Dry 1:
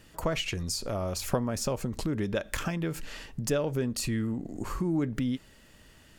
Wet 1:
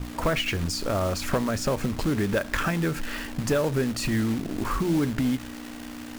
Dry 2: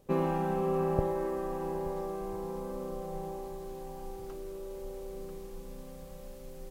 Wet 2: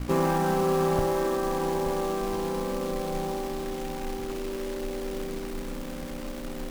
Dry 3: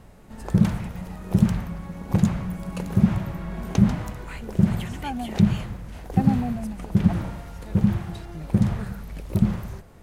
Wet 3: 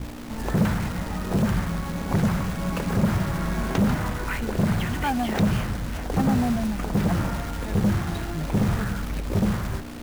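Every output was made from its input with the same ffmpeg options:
ffmpeg -i in.wav -filter_complex "[0:a]aeval=exprs='val(0)+0.0158*(sin(2*PI*60*n/s)+sin(2*PI*2*60*n/s)/2+sin(2*PI*3*60*n/s)/3+sin(2*PI*4*60*n/s)/4+sin(2*PI*5*60*n/s)/5)':channel_layout=same,adynamicequalizer=threshold=0.00316:dfrequency=1500:dqfactor=1.3:tfrequency=1500:tqfactor=1.3:attack=5:release=100:ratio=0.375:range=3:mode=boostabove:tftype=bell,lowpass=frequency=3300:poles=1,asplit=2[link_01][link_02];[link_02]acompressor=threshold=-32dB:ratio=5,volume=-0.5dB[link_03];[link_01][link_03]amix=inputs=2:normalize=0,acrusher=bits=3:mode=log:mix=0:aa=0.000001,asoftclip=type=tanh:threshold=-18.5dB,bandreject=frequency=60:width_type=h:width=6,bandreject=frequency=120:width_type=h:width=6,bandreject=frequency=180:width_type=h:width=6,volume=3dB" out.wav

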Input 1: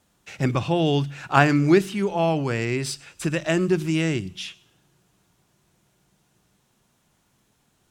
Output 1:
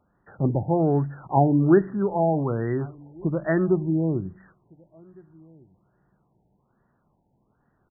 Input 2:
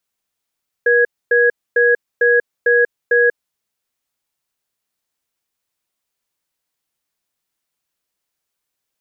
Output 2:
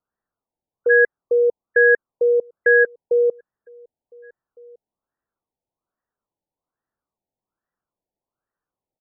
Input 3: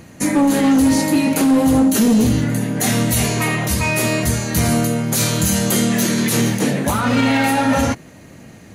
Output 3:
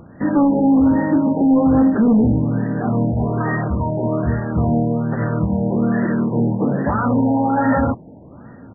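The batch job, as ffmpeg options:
ffmpeg -i in.wav -filter_complex "[0:a]asplit=2[link_01][link_02];[link_02]adelay=1458,volume=-27dB,highshelf=frequency=4000:gain=-32.8[link_03];[link_01][link_03]amix=inputs=2:normalize=0,afftfilt=real='re*lt(b*sr/1024,920*pow(2000/920,0.5+0.5*sin(2*PI*1.2*pts/sr)))':imag='im*lt(b*sr/1024,920*pow(2000/920,0.5+0.5*sin(2*PI*1.2*pts/sr)))':win_size=1024:overlap=0.75" out.wav

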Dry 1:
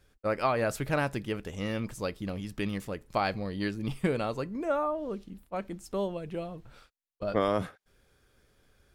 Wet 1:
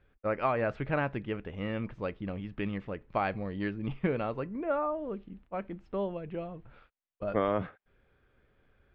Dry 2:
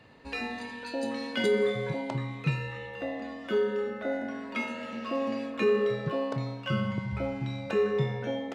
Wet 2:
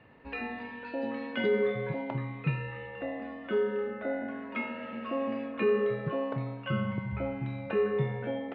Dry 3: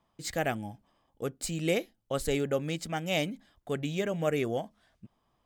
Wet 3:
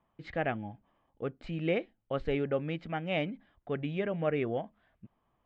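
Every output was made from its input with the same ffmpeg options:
ffmpeg -i in.wav -af "lowpass=frequency=2800:width=0.5412,lowpass=frequency=2800:width=1.3066,volume=-1.5dB" out.wav

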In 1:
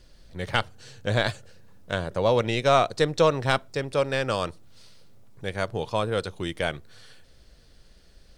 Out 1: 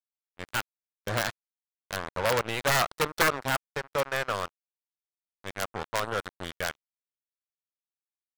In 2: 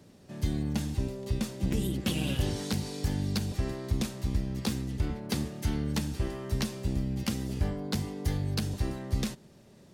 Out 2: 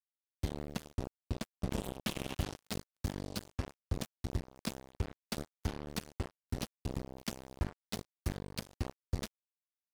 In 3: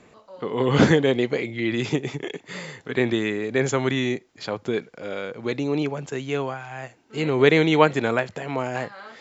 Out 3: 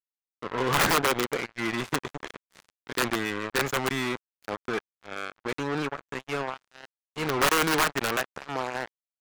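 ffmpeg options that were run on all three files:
ffmpeg -i in.wav -af "aeval=exprs='(mod(3.98*val(0)+1,2)-1)/3.98':channel_layout=same,acrusher=bits=3:mix=0:aa=0.5,adynamicequalizer=threshold=0.0112:dfrequency=1300:dqfactor=0.88:tfrequency=1300:tqfactor=0.88:attack=5:release=100:ratio=0.375:range=4:mode=boostabove:tftype=bell,volume=-7.5dB" out.wav

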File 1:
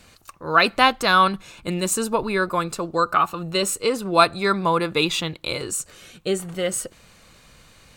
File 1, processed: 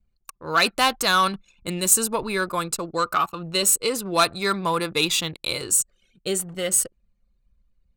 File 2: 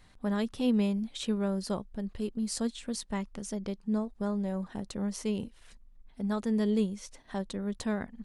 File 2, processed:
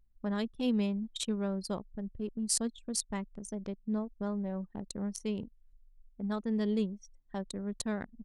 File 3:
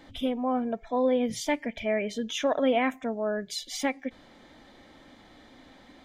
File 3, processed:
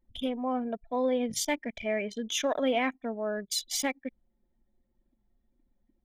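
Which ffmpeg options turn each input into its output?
ffmpeg -i in.wav -af "acontrast=60,anlmdn=25.1,crystalizer=i=2.5:c=0,volume=-9.5dB" out.wav

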